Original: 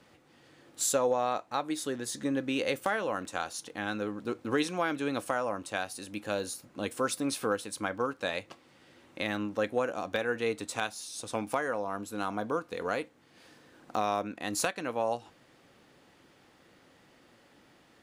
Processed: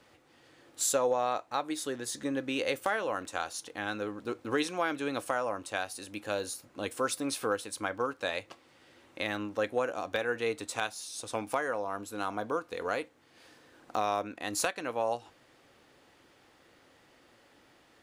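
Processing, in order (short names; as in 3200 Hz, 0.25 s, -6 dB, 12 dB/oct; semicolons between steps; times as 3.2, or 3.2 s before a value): bell 180 Hz -7 dB 0.99 oct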